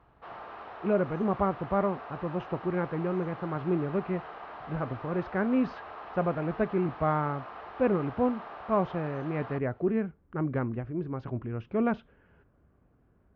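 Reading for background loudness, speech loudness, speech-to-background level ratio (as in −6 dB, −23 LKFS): −43.5 LKFS, −31.0 LKFS, 12.5 dB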